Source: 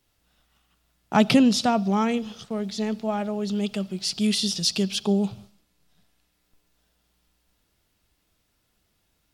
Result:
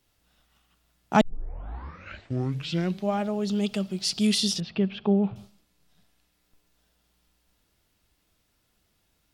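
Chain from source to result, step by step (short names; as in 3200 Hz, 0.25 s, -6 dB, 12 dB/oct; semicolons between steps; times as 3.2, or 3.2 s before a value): 1.21 tape start 1.99 s; 4.6–5.36 LPF 2400 Hz 24 dB/oct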